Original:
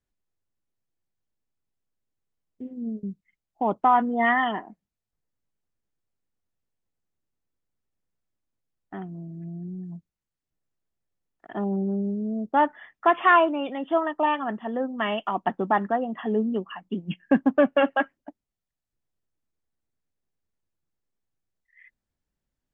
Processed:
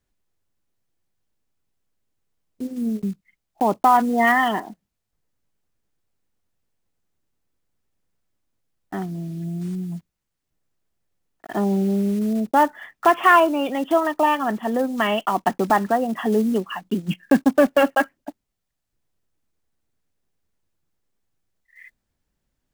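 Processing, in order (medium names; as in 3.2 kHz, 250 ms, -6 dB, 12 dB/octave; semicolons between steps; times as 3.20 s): block-companded coder 5-bit; in parallel at +0.5 dB: compression, threshold -28 dBFS, peak gain reduction 13.5 dB; on the sum: trim +1.5 dB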